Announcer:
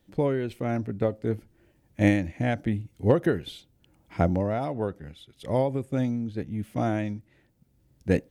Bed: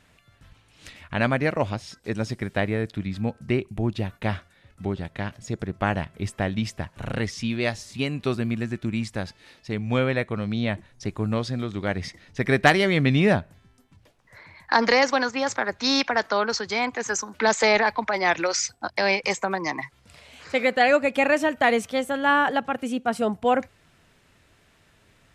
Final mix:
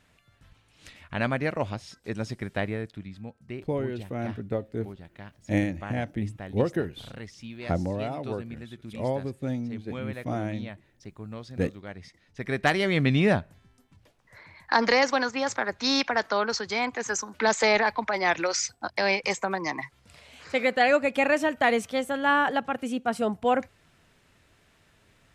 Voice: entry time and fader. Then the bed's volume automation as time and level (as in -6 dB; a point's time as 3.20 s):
3.50 s, -4.0 dB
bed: 2.65 s -4.5 dB
3.26 s -14 dB
12.08 s -14 dB
12.97 s -2.5 dB